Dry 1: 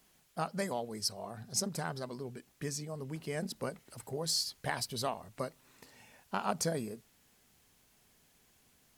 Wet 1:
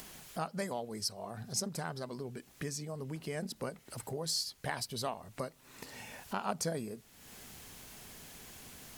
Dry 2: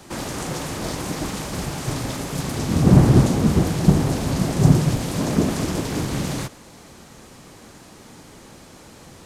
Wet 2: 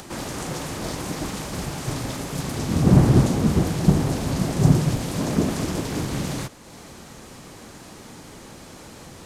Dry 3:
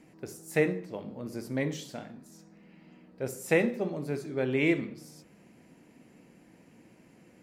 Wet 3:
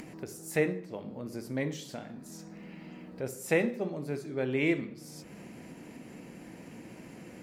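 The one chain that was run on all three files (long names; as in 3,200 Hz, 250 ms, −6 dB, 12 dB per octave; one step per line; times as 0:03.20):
upward compression, threshold −33 dBFS
level −2 dB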